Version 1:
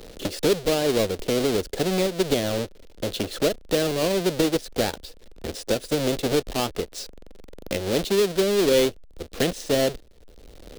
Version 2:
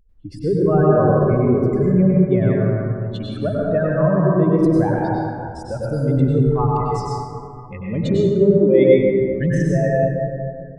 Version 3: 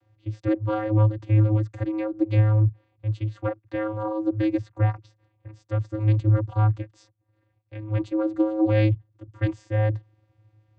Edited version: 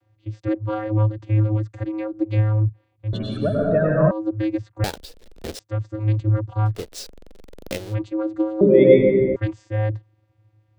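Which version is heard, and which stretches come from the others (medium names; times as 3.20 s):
3
3.13–4.11 s: from 2
4.84–5.59 s: from 1
6.77–7.83 s: from 1, crossfade 0.24 s
8.61–9.36 s: from 2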